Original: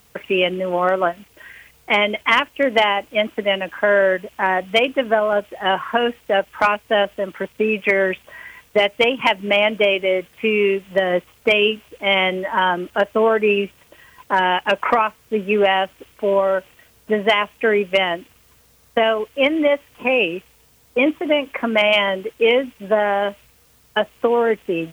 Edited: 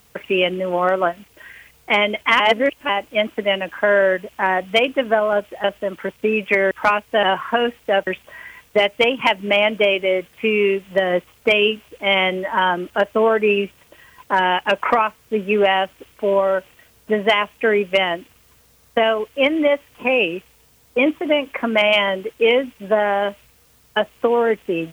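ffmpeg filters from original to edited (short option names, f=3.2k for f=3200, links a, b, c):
-filter_complex "[0:a]asplit=7[a][b][c][d][e][f][g];[a]atrim=end=2.402[h];[b]atrim=start=2.398:end=2.892,asetpts=PTS-STARTPTS,areverse[i];[c]atrim=start=2.888:end=5.642[j];[d]atrim=start=6.998:end=8.072[k];[e]atrim=start=6.478:end=7.002[l];[f]atrim=start=5.638:end=6.482[m];[g]atrim=start=8.068[n];[h][i]acrossfade=d=0.004:c1=hsin:c2=hsin[o];[o][j]acrossfade=d=0.004:c1=hsin:c2=hsin[p];[p][k]acrossfade=d=0.004:c1=hsin:c2=hsin[q];[q][l]acrossfade=d=0.004:c1=hsin:c2=hsin[r];[r][m]acrossfade=d=0.004:c1=hsin:c2=hsin[s];[s][n]acrossfade=d=0.004:c1=hsin:c2=hsin"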